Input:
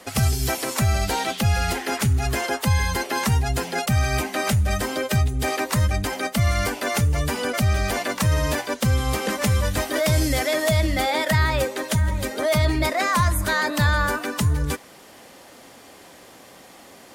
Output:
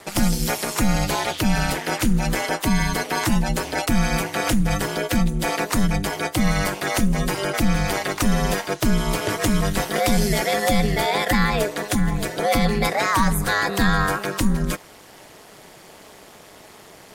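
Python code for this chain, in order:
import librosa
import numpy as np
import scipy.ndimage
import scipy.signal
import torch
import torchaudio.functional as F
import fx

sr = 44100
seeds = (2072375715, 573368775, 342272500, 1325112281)

y = x * np.sin(2.0 * np.pi * 100.0 * np.arange(len(x)) / sr)
y = y * librosa.db_to_amplitude(4.0)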